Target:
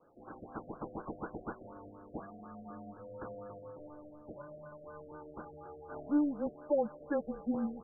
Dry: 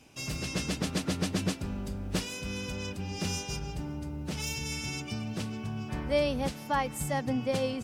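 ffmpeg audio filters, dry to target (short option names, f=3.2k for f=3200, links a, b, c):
-af "highpass=f=560:t=q:w=0.5412,highpass=f=560:t=q:w=1.307,lowpass=f=3.6k:t=q:w=0.5176,lowpass=f=3.6k:t=q:w=0.7071,lowpass=f=3.6k:t=q:w=1.932,afreqshift=-290,afftfilt=real='re*lt(b*sr/1024,720*pow(1700/720,0.5+0.5*sin(2*PI*4.1*pts/sr)))':imag='im*lt(b*sr/1024,720*pow(1700/720,0.5+0.5*sin(2*PI*4.1*pts/sr)))':win_size=1024:overlap=0.75,volume=1dB"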